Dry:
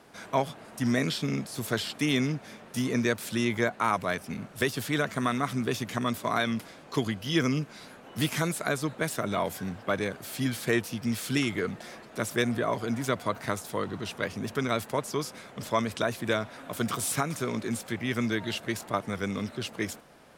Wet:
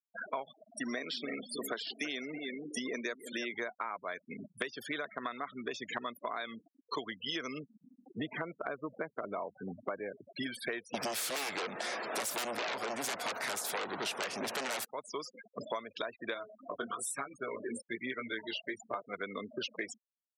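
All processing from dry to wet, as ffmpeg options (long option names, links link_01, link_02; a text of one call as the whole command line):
ffmpeg -i in.wav -filter_complex "[0:a]asettb=1/sr,asplit=3[link_01][link_02][link_03];[link_01]atrim=end=0.704[link_04];[link_02]atrim=start=0.7:end=3.54,asetpts=PTS-STARTPTS,afade=type=in:duration=0.004:curve=qsin,afade=type=out:start_time=2.836:duration=0.004:curve=qsin,highpass=frequency=170:width=0.5412,highpass=frequency=170:width=1.3066,asplit=2[link_05][link_06];[link_06]adelay=320,lowpass=frequency=3800:poles=1,volume=-11dB,asplit=2[link_07][link_08];[link_08]adelay=320,lowpass=frequency=3800:poles=1,volume=0.3,asplit=2[link_09][link_10];[link_10]adelay=320,lowpass=frequency=3800:poles=1,volume=0.3[link_11];[link_05][link_07][link_09][link_11]amix=inputs=4:normalize=0,atrim=end_sample=125244[link_12];[link_03]atrim=start=3.536[link_13];[link_04][link_12]acrossfade=duration=0.004:curve1=hsin:curve2=qsin[link_14];[link_14][link_13]acrossfade=duration=0.004:curve1=qsin:curve2=hsin,asettb=1/sr,asplit=3[link_15][link_16][link_17];[link_15]atrim=end=7.634[link_18];[link_16]atrim=start=7.63:end=10.37,asetpts=PTS-STARTPTS,afade=type=in:duration=0.004:curve=qsin,afade=type=out:start_time=2.736:duration=0.004:curve=qsin,lowpass=frequency=1200:poles=1,aeval=exprs='val(0)+0.000631*(sin(2*PI*60*n/s)+sin(2*PI*2*60*n/s)/2+sin(2*PI*3*60*n/s)/3+sin(2*PI*4*60*n/s)/4+sin(2*PI*5*60*n/s)/5)':channel_layout=same,equalizer=frequency=70:width=0.47:gain=5[link_19];[link_17]atrim=start=10.366[link_20];[link_18][link_19]acrossfade=duration=0.004:curve1=hsin:curve2=qsin[link_21];[link_21][link_20]acrossfade=duration=0.004:curve1=qsin:curve2=hsin,asettb=1/sr,asplit=3[link_22][link_23][link_24];[link_22]atrim=end=10.944[link_25];[link_23]atrim=start=10.94:end=14.85,asetpts=PTS-STARTPTS,afade=type=in:duration=0.004:curve=qsin,afade=type=out:start_time=3.906:duration=0.004:curve=qsin,adynamicequalizer=threshold=0.00224:dfrequency=3100:dqfactor=6.2:tfrequency=3100:tqfactor=6.2:attack=5:release=100:ratio=0.375:range=3.5:mode=cutabove:tftype=bell,aeval=exprs='0.224*sin(PI/2*7.08*val(0)/0.224)':channel_layout=same[link_26];[link_24]atrim=start=14.846[link_27];[link_25][link_26]acrossfade=duration=0.004:curve1=hsin:curve2=qsin[link_28];[link_28][link_27]acrossfade=duration=0.004:curve1=qsin:curve2=hsin,asettb=1/sr,asplit=3[link_29][link_30][link_31];[link_29]atrim=end=16.344[link_32];[link_30]atrim=start=16.34:end=19.14,asetpts=PTS-STARTPTS,afade=type=in:duration=0.004:curve=qsin,afade=type=out:start_time=2.796:duration=0.004:curve=qsin,bandreject=frequency=214.8:width_type=h:width=4,bandreject=frequency=429.6:width_type=h:width=4,bandreject=frequency=644.4:width_type=h:width=4,bandreject=frequency=859.2:width_type=h:width=4,bandreject=frequency=1074:width_type=h:width=4,bandreject=frequency=1288.8:width_type=h:width=4,bandreject=frequency=1503.6:width_type=h:width=4,bandreject=frequency=1718.4:width_type=h:width=4,bandreject=frequency=1933.2:width_type=h:width=4,bandreject=frequency=2148:width_type=h:width=4,bandreject=frequency=2362.8:width_type=h:width=4,bandreject=frequency=2577.6:width_type=h:width=4,bandreject=frequency=2792.4:width_type=h:width=4,bandreject=frequency=3007.2:width_type=h:width=4,bandreject=frequency=3222:width_type=h:width=4,bandreject=frequency=3436.8:width_type=h:width=4,bandreject=frequency=3651.6:width_type=h:width=4,bandreject=frequency=3866.4:width_type=h:width=4,bandreject=frequency=4081.2:width_type=h:width=4,bandreject=frequency=4296:width_type=h:width=4,bandreject=frequency=4510.8:width_type=h:width=4,bandreject=frequency=4725.6:width_type=h:width=4,bandreject=frequency=4940.4:width_type=h:width=4,bandreject=frequency=5155.2:width_type=h:width=4,bandreject=frequency=5370:width_type=h:width=4,bandreject=frequency=5584.8:width_type=h:width=4,bandreject=frequency=5799.6:width_type=h:width=4,bandreject=frequency=6014.4:width_type=h:width=4,bandreject=frequency=6229.2:width_type=h:width=4,bandreject=frequency=6444:width_type=h:width=4,bandreject=frequency=6658.8:width_type=h:width=4,bandreject=frequency=6873.6:width_type=h:width=4,bandreject=frequency=7088.4:width_type=h:width=4,flanger=delay=15:depth=6:speed=1.1[link_33];[link_31]atrim=start=19.136[link_34];[link_32][link_33]acrossfade=duration=0.004:curve1=hsin:curve2=qsin[link_35];[link_35][link_34]acrossfade=duration=0.004:curve1=qsin:curve2=hsin,afftfilt=real='re*gte(hypot(re,im),0.0224)':imag='im*gte(hypot(re,im),0.0224)':win_size=1024:overlap=0.75,highpass=450,acompressor=threshold=-43dB:ratio=10,volume=8dB" out.wav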